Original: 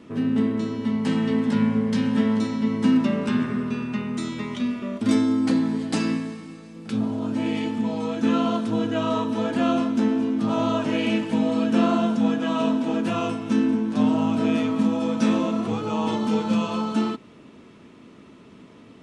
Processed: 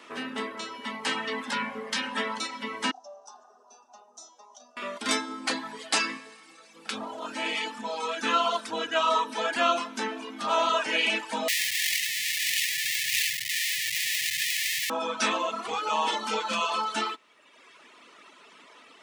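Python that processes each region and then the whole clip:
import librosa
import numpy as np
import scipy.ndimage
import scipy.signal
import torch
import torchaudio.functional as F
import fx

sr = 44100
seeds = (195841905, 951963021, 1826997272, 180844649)

y = fx.chain(x, sr, fx.peak_eq(hz=3900.0, db=-5.0, octaves=2.5),
    fx.clip_hard(threshold_db=-13.5),
    fx.double_bandpass(hz=2100.0, octaves=3.0), at=(2.91, 4.77))
y = fx.chain(y, sr, fx.peak_eq(hz=98.0, db=9.0, octaves=0.32),
    fx.schmitt(flips_db=-29.0),
    fx.brickwall_bandstop(low_hz=160.0, high_hz=1700.0), at=(11.48, 14.9))
y = fx.dereverb_blind(y, sr, rt60_s=1.2)
y = scipy.signal.sosfilt(scipy.signal.butter(2, 920.0, 'highpass', fs=sr, output='sos'), y)
y = F.gain(torch.from_numpy(y), 8.0).numpy()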